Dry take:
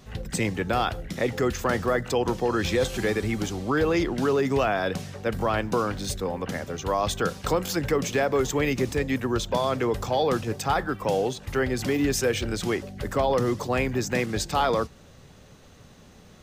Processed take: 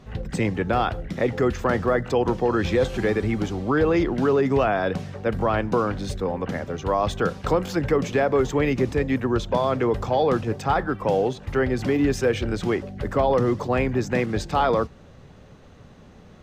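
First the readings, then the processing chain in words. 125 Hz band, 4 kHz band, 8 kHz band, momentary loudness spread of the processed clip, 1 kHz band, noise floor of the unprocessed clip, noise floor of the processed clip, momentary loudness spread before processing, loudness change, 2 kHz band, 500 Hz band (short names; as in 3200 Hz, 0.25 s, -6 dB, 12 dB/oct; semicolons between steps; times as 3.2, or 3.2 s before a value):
+3.5 dB, -3.5 dB, -8.0 dB, 6 LU, +2.5 dB, -51 dBFS, -48 dBFS, 6 LU, +2.5 dB, +0.5 dB, +3.0 dB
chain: LPF 1800 Hz 6 dB/oct; gain +3.5 dB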